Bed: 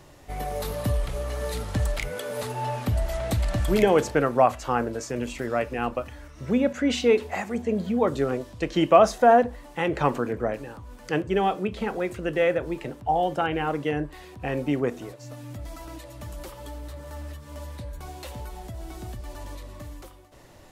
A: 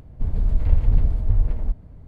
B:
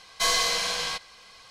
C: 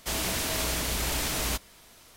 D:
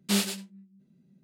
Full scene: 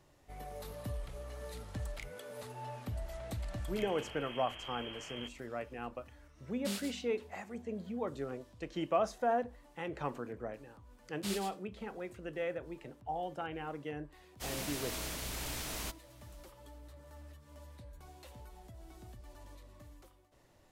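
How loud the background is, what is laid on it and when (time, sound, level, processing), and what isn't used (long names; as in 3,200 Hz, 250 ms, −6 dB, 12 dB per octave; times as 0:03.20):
bed −15 dB
0:03.71: mix in C −17 dB + voice inversion scrambler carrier 3,200 Hz
0:06.56: mix in D −13.5 dB
0:11.14: mix in D −13 dB
0:14.34: mix in C −11 dB, fades 0.10 s
not used: A, B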